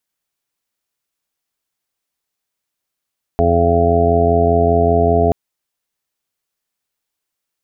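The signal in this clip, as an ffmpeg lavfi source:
ffmpeg -f lavfi -i "aevalsrc='0.141*sin(2*PI*85.1*t)+0.0794*sin(2*PI*170.2*t)+0.0891*sin(2*PI*255.3*t)+0.0562*sin(2*PI*340.4*t)+0.158*sin(2*PI*425.5*t)+0.0266*sin(2*PI*510.6*t)+0.0501*sin(2*PI*595.7*t)+0.188*sin(2*PI*680.8*t)+0.0531*sin(2*PI*765.9*t)':duration=1.93:sample_rate=44100" out.wav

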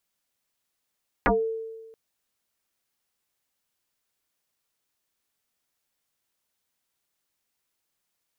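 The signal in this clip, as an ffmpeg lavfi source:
ffmpeg -f lavfi -i "aevalsrc='0.158*pow(10,-3*t/1.32)*sin(2*PI*448*t+8.1*pow(10,-3*t/0.2)*sin(2*PI*0.55*448*t))':duration=0.68:sample_rate=44100" out.wav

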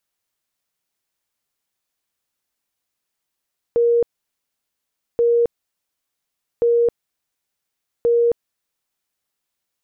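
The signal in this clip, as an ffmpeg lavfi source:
ffmpeg -f lavfi -i "aevalsrc='0.237*sin(2*PI*471*mod(t,1.43))*lt(mod(t,1.43),126/471)':duration=5.72:sample_rate=44100" out.wav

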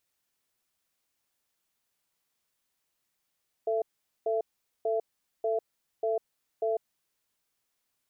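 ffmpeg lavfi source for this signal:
ffmpeg -f lavfi -i "aevalsrc='0.0398*(sin(2*PI*444*t)+sin(2*PI*671*t))*clip(min(mod(t,0.59),0.15-mod(t,0.59))/0.005,0,1)':duration=3.2:sample_rate=44100" out.wav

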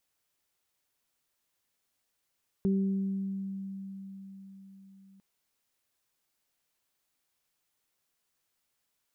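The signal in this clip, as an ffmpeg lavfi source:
ffmpeg -f lavfi -i "aevalsrc='0.0668*pow(10,-3*t/4.87)*sin(2*PI*194*t)+0.0299*pow(10,-3*t/1.33)*sin(2*PI*388*t)':duration=2.55:sample_rate=44100" out.wav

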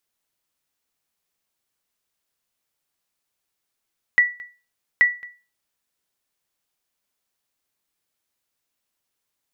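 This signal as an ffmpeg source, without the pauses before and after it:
ffmpeg -f lavfi -i "aevalsrc='0.422*(sin(2*PI*1950*mod(t,0.83))*exp(-6.91*mod(t,0.83)/0.32)+0.0668*sin(2*PI*1950*max(mod(t,0.83)-0.22,0))*exp(-6.91*max(mod(t,0.83)-0.22,0)/0.32))':duration=1.66:sample_rate=44100" out.wav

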